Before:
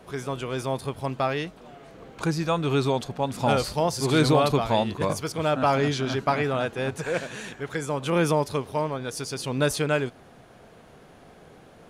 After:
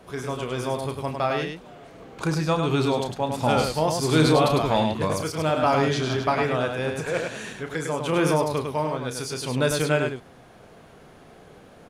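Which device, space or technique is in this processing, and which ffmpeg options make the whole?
slapback doubling: -filter_complex "[0:a]asplit=3[a][b][c];[b]adelay=32,volume=-9dB[d];[c]adelay=102,volume=-5dB[e];[a][d][e]amix=inputs=3:normalize=0"

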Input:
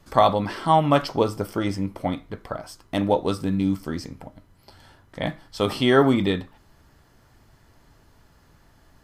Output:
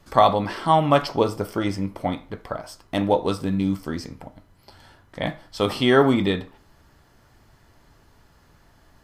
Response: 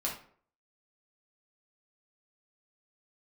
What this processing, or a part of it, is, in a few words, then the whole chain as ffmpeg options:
filtered reverb send: -filter_complex "[0:a]asplit=2[a][b];[b]highpass=290,lowpass=7.6k[c];[1:a]atrim=start_sample=2205[d];[c][d]afir=irnorm=-1:irlink=0,volume=-15dB[e];[a][e]amix=inputs=2:normalize=0"

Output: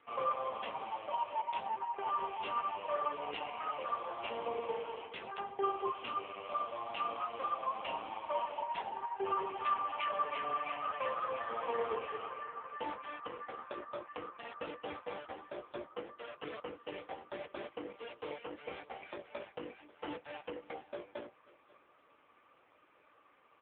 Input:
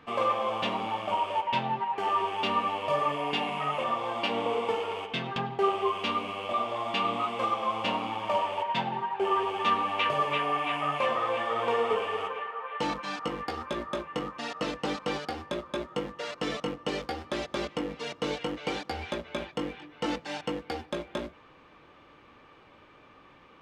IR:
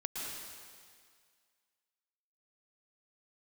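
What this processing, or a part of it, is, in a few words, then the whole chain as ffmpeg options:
satellite phone: -af "highpass=370,lowpass=3.3k,aecho=1:1:539:0.0944,volume=-6dB" -ar 8000 -c:a libopencore_amrnb -b:a 5900

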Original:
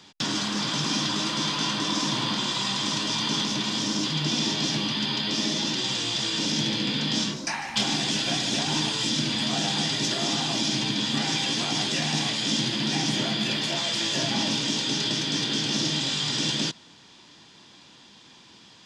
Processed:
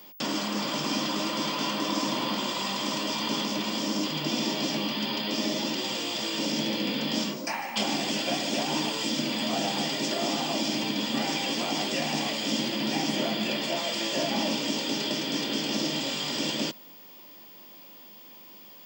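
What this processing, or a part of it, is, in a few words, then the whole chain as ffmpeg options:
old television with a line whistle: -af "highpass=f=190:w=0.5412,highpass=f=190:w=1.3066,equalizer=f=570:t=q:w=4:g=8,equalizer=f=1.6k:t=q:w=4:g=-6,equalizer=f=3.8k:t=q:w=4:g=-10,equalizer=f=6.1k:t=q:w=4:g=-7,lowpass=f=8.5k:w=0.5412,lowpass=f=8.5k:w=1.3066,aeval=exprs='val(0)+0.00447*sin(2*PI*15625*n/s)':c=same"

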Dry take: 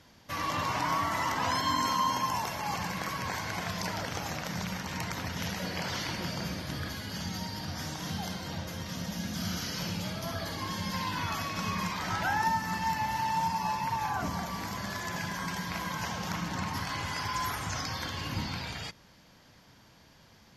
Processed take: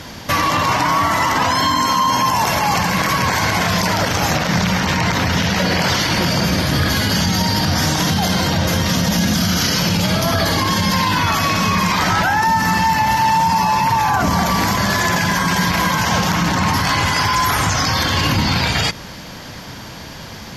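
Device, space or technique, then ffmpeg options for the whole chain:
loud club master: -filter_complex "[0:a]asettb=1/sr,asplit=3[a][b][c];[a]atrim=end=4.344[d];[b]atrim=start=4.34:end=5.79,asetpts=PTS-STARTPTS,afade=t=in:d=0.004:c=qsin,afade=t=out:st=1.446:d=0.004:c=qsin,acrossover=split=6300[e][f];[f]acompressor=threshold=-55dB:ratio=4:attack=1:release=60[g];[e][g]amix=inputs=2:normalize=0[h];[c]atrim=start=5.786[i];[d][h]acrossfade=d=0.004:c1=hsin:c2=qsin[j];[j][i]acrossfade=d=0.004:c1=qsin:c2=hsin,acompressor=threshold=-33dB:ratio=2,asoftclip=type=hard:threshold=-23dB,alimiter=level_in=32dB:limit=-1dB:release=50:level=0:latency=1,volume=-7dB"

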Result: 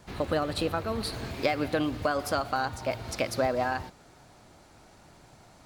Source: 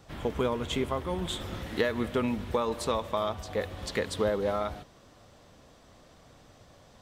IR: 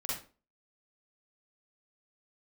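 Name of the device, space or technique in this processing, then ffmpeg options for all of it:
nightcore: -af "asetrate=54684,aresample=44100,volume=1dB"

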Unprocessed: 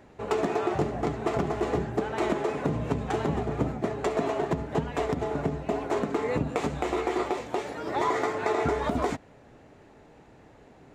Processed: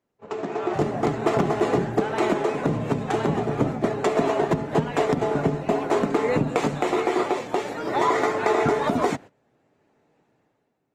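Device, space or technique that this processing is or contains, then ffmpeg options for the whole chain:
video call: -af "highpass=f=110:w=0.5412,highpass=f=110:w=1.3066,dynaudnorm=f=120:g=11:m=13.5dB,agate=range=-19dB:threshold=-33dB:ratio=16:detection=peak,volume=-5.5dB" -ar 48000 -c:a libopus -b:a 24k

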